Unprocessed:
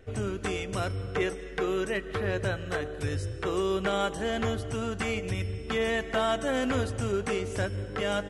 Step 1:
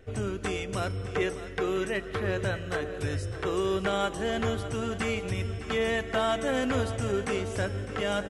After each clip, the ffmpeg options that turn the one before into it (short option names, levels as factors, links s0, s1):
-af "aecho=1:1:605|1210|1815|2420|3025:0.211|0.108|0.055|0.028|0.0143"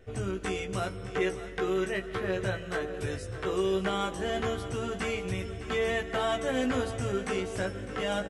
-filter_complex "[0:a]asplit=2[s0][s1];[s1]adelay=16,volume=0.631[s2];[s0][s2]amix=inputs=2:normalize=0,volume=0.708"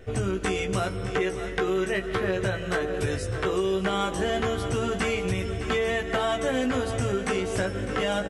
-af "acompressor=threshold=0.0282:ratio=6,volume=2.66"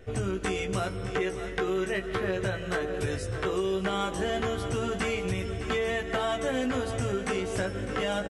-af "aresample=32000,aresample=44100,volume=0.708"